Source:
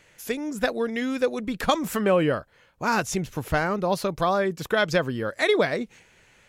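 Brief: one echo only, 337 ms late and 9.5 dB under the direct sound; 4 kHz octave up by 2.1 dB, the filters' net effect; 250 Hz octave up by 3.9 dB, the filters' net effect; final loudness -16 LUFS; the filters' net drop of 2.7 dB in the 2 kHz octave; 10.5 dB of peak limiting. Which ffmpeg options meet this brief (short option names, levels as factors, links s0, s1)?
-af "equalizer=f=250:t=o:g=5,equalizer=f=2000:t=o:g=-4.5,equalizer=f=4000:t=o:g=4,alimiter=limit=0.133:level=0:latency=1,aecho=1:1:337:0.335,volume=3.76"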